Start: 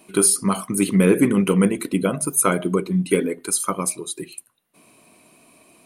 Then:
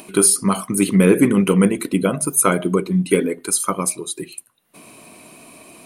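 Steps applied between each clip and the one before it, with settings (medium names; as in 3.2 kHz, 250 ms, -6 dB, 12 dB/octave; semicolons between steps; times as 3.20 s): upward compressor, threshold -37 dBFS; trim +2.5 dB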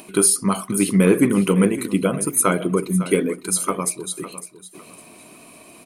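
feedback delay 555 ms, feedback 27%, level -14 dB; trim -2 dB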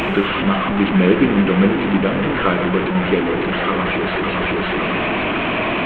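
one-bit delta coder 16 kbps, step -14.5 dBFS; gated-style reverb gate 280 ms flat, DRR 8.5 dB; trim +1 dB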